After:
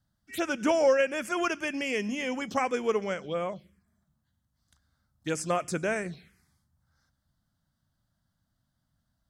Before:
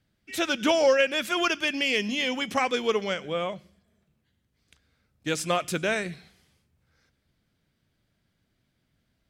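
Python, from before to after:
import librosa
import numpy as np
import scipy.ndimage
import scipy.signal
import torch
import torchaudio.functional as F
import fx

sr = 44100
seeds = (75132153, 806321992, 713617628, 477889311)

y = fx.env_phaser(x, sr, low_hz=410.0, high_hz=3900.0, full_db=-25.0)
y = y * 10.0 ** (-1.5 / 20.0)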